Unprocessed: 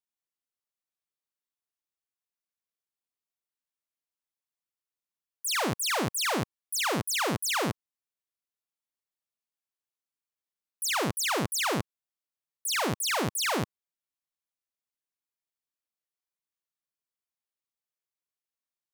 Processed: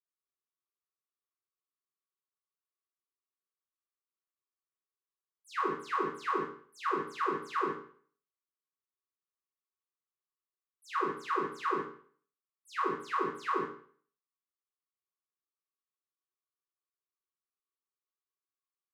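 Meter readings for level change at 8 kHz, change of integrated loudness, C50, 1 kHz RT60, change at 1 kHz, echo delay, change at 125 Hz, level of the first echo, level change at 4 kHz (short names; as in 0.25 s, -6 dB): under -25 dB, -6.0 dB, 6.0 dB, 0.50 s, 0.0 dB, none, -18.0 dB, none, -20.0 dB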